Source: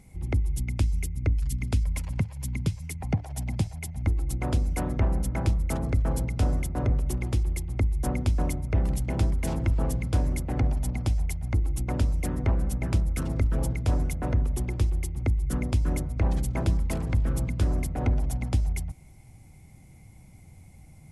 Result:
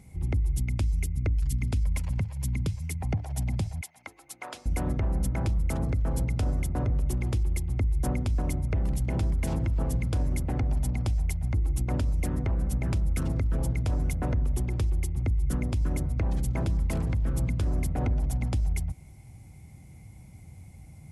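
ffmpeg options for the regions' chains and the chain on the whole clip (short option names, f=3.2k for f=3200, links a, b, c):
-filter_complex "[0:a]asettb=1/sr,asplit=3[a][b][c];[a]atrim=end=3.814[d];[b]atrim=start=3.81:end=4.66,asetpts=PTS-STARTPTS,afade=t=in:d=0.004:c=qsin,afade=t=out:st=0.846:d=0.004:c=qsin,highpass=890,highshelf=f=7.7k:g=-4.5[e];[c]atrim=start=4.656[f];[d][e]acrossfade=d=0.004:c1=hsin:c2=qsin[g];[g][f]acrossfade=d=0.004:c1=qsin:c2=hsin,highpass=63,lowshelf=f=91:g=9.5,alimiter=limit=-19.5dB:level=0:latency=1:release=71"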